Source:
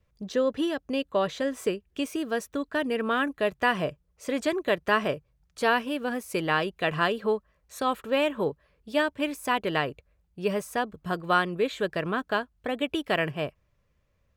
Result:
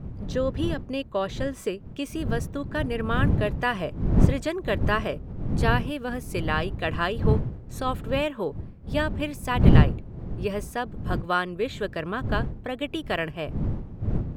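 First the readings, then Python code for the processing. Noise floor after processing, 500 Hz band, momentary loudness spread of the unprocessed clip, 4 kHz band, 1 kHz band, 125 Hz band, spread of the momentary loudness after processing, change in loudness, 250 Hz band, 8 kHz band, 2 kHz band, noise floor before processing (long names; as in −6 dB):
−43 dBFS, −1.0 dB, 7 LU, −1.5 dB, −1.5 dB, +15.5 dB, 10 LU, +1.5 dB, +3.0 dB, −1.5 dB, −1.5 dB, −71 dBFS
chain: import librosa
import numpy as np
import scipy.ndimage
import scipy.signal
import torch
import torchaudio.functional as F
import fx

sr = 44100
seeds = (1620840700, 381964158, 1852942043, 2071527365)

y = fx.dmg_wind(x, sr, seeds[0], corner_hz=140.0, level_db=-25.0)
y = F.gain(torch.from_numpy(y), -1.5).numpy()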